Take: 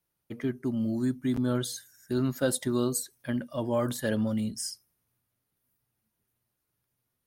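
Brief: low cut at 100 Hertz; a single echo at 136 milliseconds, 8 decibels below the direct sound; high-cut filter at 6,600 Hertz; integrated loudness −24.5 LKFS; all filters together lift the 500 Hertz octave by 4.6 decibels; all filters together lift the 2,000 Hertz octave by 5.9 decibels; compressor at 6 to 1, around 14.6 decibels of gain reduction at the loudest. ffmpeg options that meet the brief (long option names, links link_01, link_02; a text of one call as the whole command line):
ffmpeg -i in.wav -af "highpass=100,lowpass=6600,equalizer=frequency=500:width_type=o:gain=5.5,equalizer=frequency=2000:width_type=o:gain=7.5,acompressor=threshold=-33dB:ratio=6,aecho=1:1:136:0.398,volume=12.5dB" out.wav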